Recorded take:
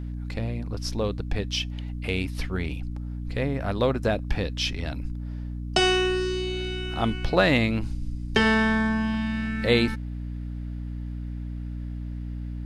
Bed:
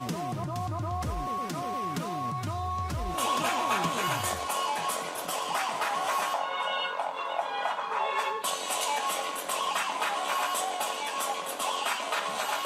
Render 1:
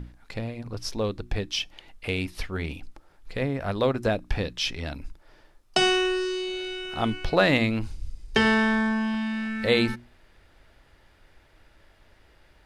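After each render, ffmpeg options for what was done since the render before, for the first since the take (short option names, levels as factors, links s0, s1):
-af "bandreject=f=60:t=h:w=6,bandreject=f=120:t=h:w=6,bandreject=f=180:t=h:w=6,bandreject=f=240:t=h:w=6,bandreject=f=300:t=h:w=6,bandreject=f=360:t=h:w=6"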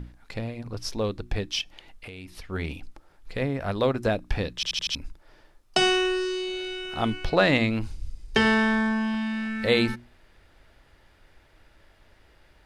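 -filter_complex "[0:a]asettb=1/sr,asplit=3[s0][s1][s2];[s0]atrim=end=1.614[s3];[s1]atrim=start=1.61:end=2.5,asetpts=PTS-STARTPTS,afade=t=in:d=0.004:c=qsin,afade=t=out:st=0.886:d=0.004:c=qsin,acompressor=threshold=0.0141:ratio=10:attack=3.2:release=140:knee=1:detection=peak[s4];[s2]atrim=start=2.496[s5];[s3][s4]acrossfade=d=0.004:c1=hsin:c2=qsin[s6];[s6][s5]acrossfade=d=0.004:c1=qsin:c2=hsin,asettb=1/sr,asplit=3[s7][s8][s9];[s7]atrim=end=7.304[s10];[s8]atrim=start=7.3:end=7.72,asetpts=PTS-STARTPTS,afade=t=in:d=0.004:c=qsin,afade=t=out:st=0.416:d=0.004:c=qsin,lowpass=9400[s11];[s9]atrim=start=7.716[s12];[s10][s11]acrossfade=d=0.004:c1=hsin:c2=qsin[s13];[s13][s12]acrossfade=d=0.004:c1=qsin:c2=hsin,asplit=6[s14][s15][s16][s17][s18][s19];[s14]atrim=end=4.632[s20];[s15]atrim=start=4.548:end=4.632[s21];[s16]atrim=start=4.548:end=4.632[s22];[s17]atrim=start=4.548:end=4.632[s23];[s18]atrim=start=4.548:end=4.632[s24];[s19]atrim=start=4.948[s25];[s20][s21]acrossfade=d=0.004:c1=hsin:c2=hsin[s26];[s26][s22]acrossfade=d=0.004:c1=hsin:c2=hsin[s27];[s27][s23]acrossfade=d=0.004:c1=hsin:c2=hsin[s28];[s28][s24]acrossfade=d=0.004:c1=hsin:c2=hsin[s29];[s29][s25]acrossfade=d=0.004:c1=hsin:c2=hsin"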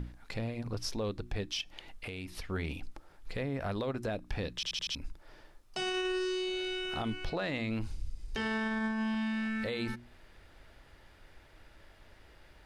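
-af "acompressor=threshold=0.02:ratio=2,alimiter=level_in=1.26:limit=0.0631:level=0:latency=1:release=16,volume=0.794"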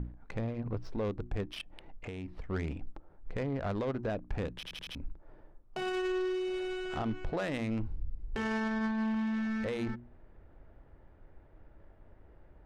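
-filter_complex "[0:a]asplit=2[s0][s1];[s1]asoftclip=type=tanh:threshold=0.0178,volume=0.316[s2];[s0][s2]amix=inputs=2:normalize=0,adynamicsmooth=sensitivity=3.5:basefreq=830"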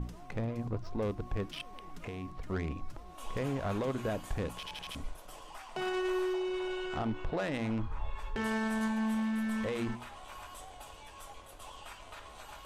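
-filter_complex "[1:a]volume=0.112[s0];[0:a][s0]amix=inputs=2:normalize=0"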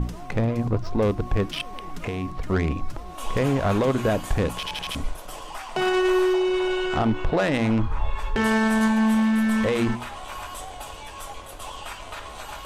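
-af "volume=3.98"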